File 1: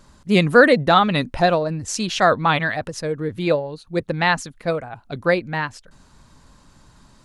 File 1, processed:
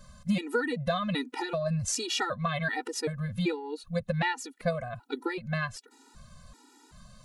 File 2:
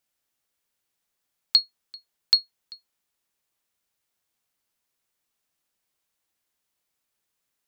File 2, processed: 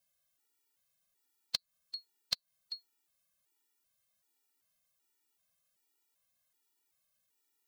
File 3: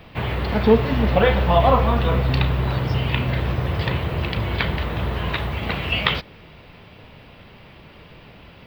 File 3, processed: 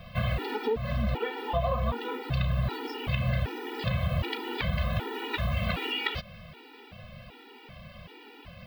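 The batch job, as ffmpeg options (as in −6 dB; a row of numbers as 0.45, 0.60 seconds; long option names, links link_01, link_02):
-af "crystalizer=i=0.5:c=0,acompressor=threshold=-22dB:ratio=16,afftfilt=real='re*gt(sin(2*PI*1.3*pts/sr)*(1-2*mod(floor(b*sr/1024/250),2)),0)':imag='im*gt(sin(2*PI*1.3*pts/sr)*(1-2*mod(floor(b*sr/1024/250),2)),0)':win_size=1024:overlap=0.75"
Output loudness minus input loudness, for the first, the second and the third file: −12.0, −18.5, −9.5 LU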